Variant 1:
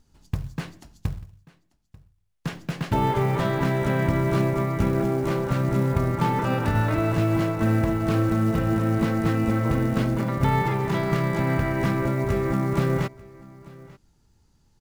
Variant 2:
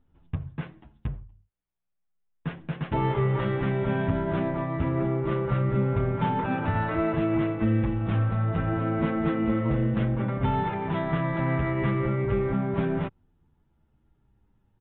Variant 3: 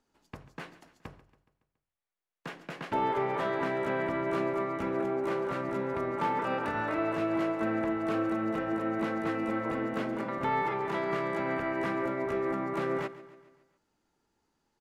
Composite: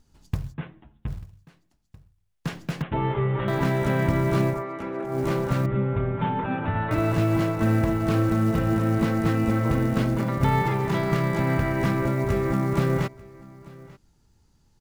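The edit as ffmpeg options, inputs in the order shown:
-filter_complex "[1:a]asplit=3[a][b][c];[0:a]asplit=5[d][e][f][g][h];[d]atrim=end=0.55[i];[a]atrim=start=0.49:end=1.12[j];[e]atrim=start=1.06:end=2.822[k];[b]atrim=start=2.818:end=3.482[l];[f]atrim=start=3.478:end=4.65[m];[2:a]atrim=start=4.49:end=5.2[n];[g]atrim=start=5.04:end=5.662[o];[c]atrim=start=5.658:end=6.912[p];[h]atrim=start=6.908[q];[i][j]acrossfade=d=0.06:c1=tri:c2=tri[r];[r][k]acrossfade=d=0.06:c1=tri:c2=tri[s];[s][l]acrossfade=d=0.004:c1=hsin:c2=hsin[t];[t][m]acrossfade=d=0.004:c1=hsin:c2=hsin[u];[u][n]acrossfade=d=0.16:c1=tri:c2=tri[v];[v][o]acrossfade=d=0.16:c1=tri:c2=tri[w];[w][p]acrossfade=d=0.004:c1=hsin:c2=hsin[x];[x][q]acrossfade=d=0.004:c1=hsin:c2=hsin"

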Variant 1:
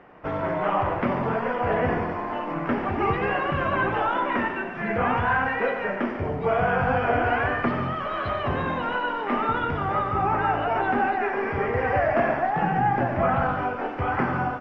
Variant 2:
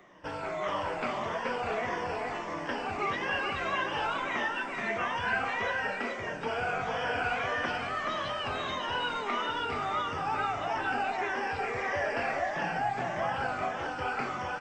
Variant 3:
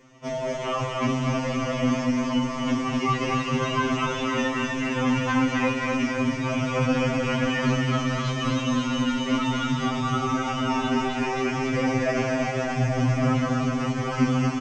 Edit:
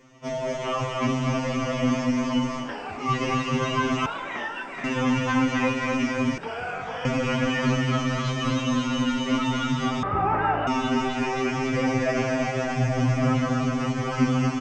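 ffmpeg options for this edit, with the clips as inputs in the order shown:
-filter_complex "[1:a]asplit=3[a][b][c];[2:a]asplit=5[d][e][f][g][h];[d]atrim=end=2.72[i];[a]atrim=start=2.56:end=3.12[j];[e]atrim=start=2.96:end=4.062[k];[b]atrim=start=4.058:end=4.842[l];[f]atrim=start=4.838:end=6.382[m];[c]atrim=start=6.378:end=7.052[n];[g]atrim=start=7.048:end=10.032[o];[0:a]atrim=start=10.028:end=10.672[p];[h]atrim=start=10.668[q];[i][j]acrossfade=d=0.16:c1=tri:c2=tri[r];[r][k]acrossfade=d=0.16:c1=tri:c2=tri[s];[s][l]acrossfade=d=0.004:c1=hsin:c2=hsin[t];[t][m]acrossfade=d=0.004:c1=hsin:c2=hsin[u];[u][n]acrossfade=d=0.004:c1=hsin:c2=hsin[v];[v][o]acrossfade=d=0.004:c1=hsin:c2=hsin[w];[w][p]acrossfade=d=0.004:c1=hsin:c2=hsin[x];[x][q]acrossfade=d=0.004:c1=hsin:c2=hsin"

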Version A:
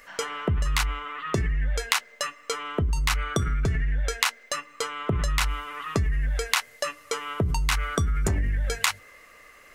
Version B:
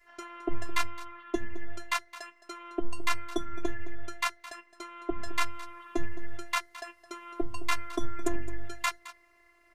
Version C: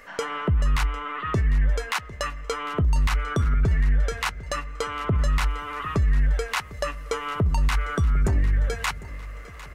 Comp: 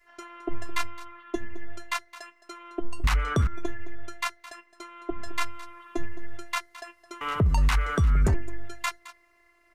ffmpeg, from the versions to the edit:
-filter_complex "[2:a]asplit=2[a][b];[1:a]asplit=3[c][d][e];[c]atrim=end=3.042[f];[a]atrim=start=3.038:end=3.472[g];[d]atrim=start=3.468:end=7.212[h];[b]atrim=start=7.208:end=8.342[i];[e]atrim=start=8.338[j];[f][g]acrossfade=d=0.004:c1=hsin:c2=hsin[k];[k][h]acrossfade=d=0.004:c1=hsin:c2=hsin[l];[l][i]acrossfade=d=0.004:c1=hsin:c2=hsin[m];[m][j]acrossfade=d=0.004:c1=hsin:c2=hsin"

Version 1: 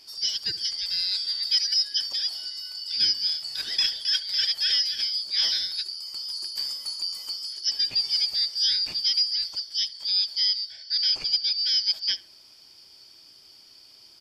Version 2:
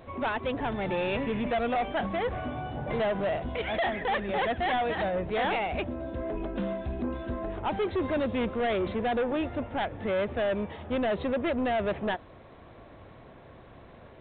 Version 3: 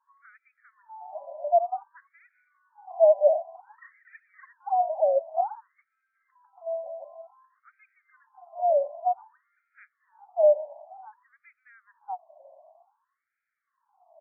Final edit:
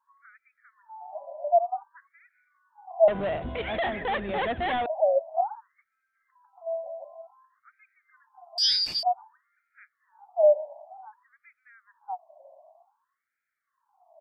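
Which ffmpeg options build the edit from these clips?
-filter_complex "[2:a]asplit=3[a][b][c];[a]atrim=end=3.082[d];[1:a]atrim=start=3.078:end=4.862[e];[b]atrim=start=4.858:end=8.582[f];[0:a]atrim=start=8.578:end=9.032[g];[c]atrim=start=9.028[h];[d][e]acrossfade=d=0.004:c1=hsin:c2=hsin[i];[i][f]acrossfade=d=0.004:c1=hsin:c2=hsin[j];[j][g]acrossfade=d=0.004:c1=hsin:c2=hsin[k];[k][h]acrossfade=d=0.004:c1=hsin:c2=hsin"

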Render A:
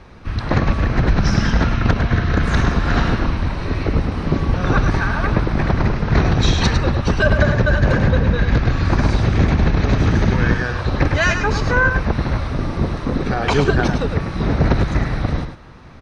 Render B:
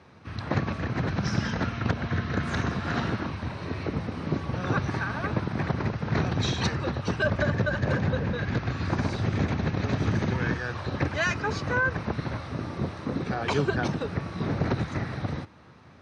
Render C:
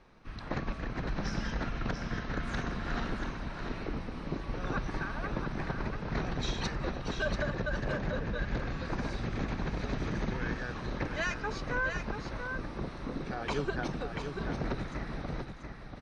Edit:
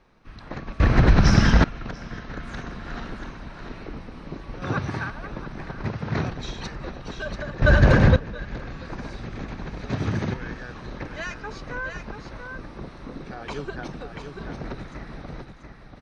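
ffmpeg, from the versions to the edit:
-filter_complex "[0:a]asplit=2[a][b];[1:a]asplit=3[c][d][e];[2:a]asplit=6[f][g][h][i][j][k];[f]atrim=end=0.802[l];[a]atrim=start=0.798:end=1.642[m];[g]atrim=start=1.638:end=4.622[n];[c]atrim=start=4.618:end=5.102[o];[h]atrim=start=5.098:end=5.842[p];[d]atrim=start=5.838:end=6.302[q];[i]atrim=start=6.298:end=7.622[r];[b]atrim=start=7.618:end=8.162[s];[j]atrim=start=8.158:end=9.902[t];[e]atrim=start=9.898:end=10.342[u];[k]atrim=start=10.338[v];[l][m]acrossfade=d=0.004:c1=hsin:c2=hsin[w];[w][n]acrossfade=d=0.004:c1=hsin:c2=hsin[x];[x][o]acrossfade=d=0.004:c1=hsin:c2=hsin[y];[y][p]acrossfade=d=0.004:c1=hsin:c2=hsin[z];[z][q]acrossfade=d=0.004:c1=hsin:c2=hsin[aa];[aa][r]acrossfade=d=0.004:c1=hsin:c2=hsin[ab];[ab][s]acrossfade=d=0.004:c1=hsin:c2=hsin[ac];[ac][t]acrossfade=d=0.004:c1=hsin:c2=hsin[ad];[ad][u]acrossfade=d=0.004:c1=hsin:c2=hsin[ae];[ae][v]acrossfade=d=0.004:c1=hsin:c2=hsin"

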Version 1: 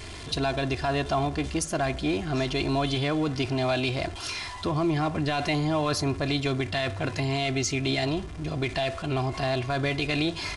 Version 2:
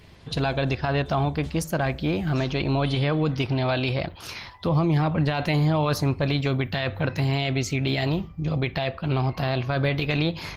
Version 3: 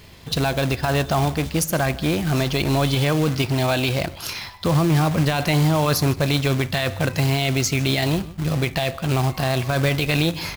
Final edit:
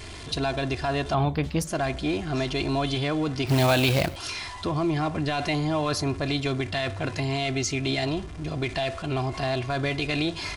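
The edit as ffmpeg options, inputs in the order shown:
-filter_complex "[0:a]asplit=3[a][b][c];[a]atrim=end=1.142[d];[1:a]atrim=start=1.138:end=1.672[e];[b]atrim=start=1.668:end=3.472[f];[2:a]atrim=start=3.468:end=4.162[g];[c]atrim=start=4.158[h];[d][e]acrossfade=d=0.004:c1=hsin:c2=hsin[i];[i][f]acrossfade=d=0.004:c1=hsin:c2=hsin[j];[j][g]acrossfade=d=0.004:c1=hsin:c2=hsin[k];[k][h]acrossfade=d=0.004:c1=hsin:c2=hsin"

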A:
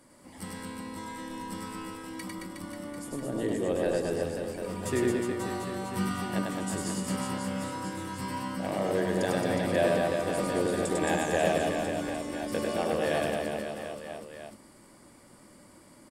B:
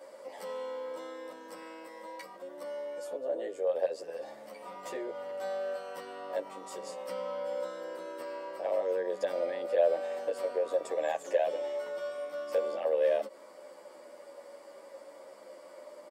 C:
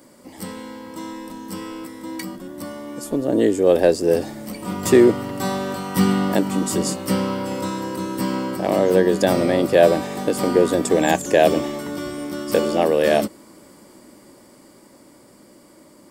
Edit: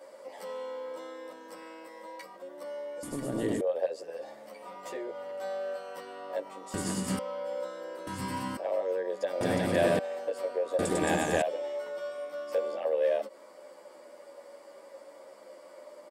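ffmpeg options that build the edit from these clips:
-filter_complex "[0:a]asplit=5[a][b][c][d][e];[1:a]asplit=6[f][g][h][i][j][k];[f]atrim=end=3.032[l];[a]atrim=start=3.028:end=3.612[m];[g]atrim=start=3.608:end=6.742[n];[b]atrim=start=6.738:end=7.192[o];[h]atrim=start=7.188:end=8.072[p];[c]atrim=start=8.068:end=8.572[q];[i]atrim=start=8.568:end=9.412[r];[d]atrim=start=9.408:end=9.992[s];[j]atrim=start=9.988:end=10.792[t];[e]atrim=start=10.788:end=11.422[u];[k]atrim=start=11.418[v];[l][m]acrossfade=d=0.004:c1=hsin:c2=hsin[w];[w][n]acrossfade=d=0.004:c1=hsin:c2=hsin[x];[x][o]acrossfade=d=0.004:c1=hsin:c2=hsin[y];[y][p]acrossfade=d=0.004:c1=hsin:c2=hsin[z];[z][q]acrossfade=d=0.004:c1=hsin:c2=hsin[aa];[aa][r]acrossfade=d=0.004:c1=hsin:c2=hsin[ab];[ab][s]acrossfade=d=0.004:c1=hsin:c2=hsin[ac];[ac][t]acrossfade=d=0.004:c1=hsin:c2=hsin[ad];[ad][u]acrossfade=d=0.004:c1=hsin:c2=hsin[ae];[ae][v]acrossfade=d=0.004:c1=hsin:c2=hsin"

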